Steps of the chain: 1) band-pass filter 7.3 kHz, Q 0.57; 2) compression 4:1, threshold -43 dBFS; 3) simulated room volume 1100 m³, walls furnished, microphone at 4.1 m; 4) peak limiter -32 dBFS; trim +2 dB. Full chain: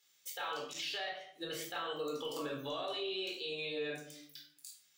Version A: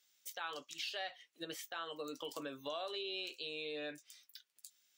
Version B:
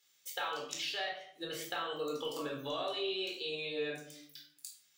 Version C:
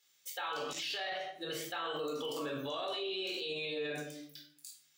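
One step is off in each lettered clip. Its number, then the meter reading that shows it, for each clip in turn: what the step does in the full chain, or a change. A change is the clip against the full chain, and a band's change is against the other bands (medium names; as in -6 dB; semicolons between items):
3, momentary loudness spread change +2 LU; 4, crest factor change +9.0 dB; 2, mean gain reduction 7.5 dB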